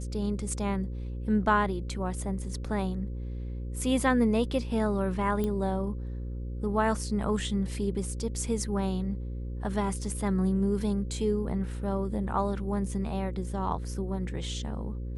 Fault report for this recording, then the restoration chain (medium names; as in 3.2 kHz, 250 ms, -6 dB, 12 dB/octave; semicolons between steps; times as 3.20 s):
buzz 60 Hz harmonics 9 -35 dBFS
5.44 s: pop -19 dBFS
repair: de-click; de-hum 60 Hz, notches 9